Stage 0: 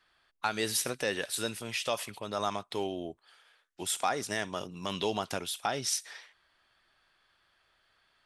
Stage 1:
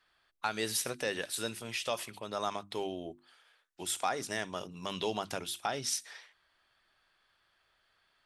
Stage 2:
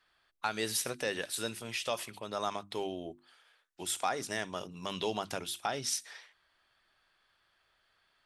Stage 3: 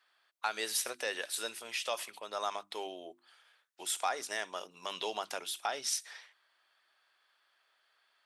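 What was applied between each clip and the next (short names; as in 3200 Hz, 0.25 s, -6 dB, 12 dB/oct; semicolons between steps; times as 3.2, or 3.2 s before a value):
notches 50/100/150/200/250/300/350 Hz; gain -2.5 dB
nothing audible
HPF 520 Hz 12 dB/oct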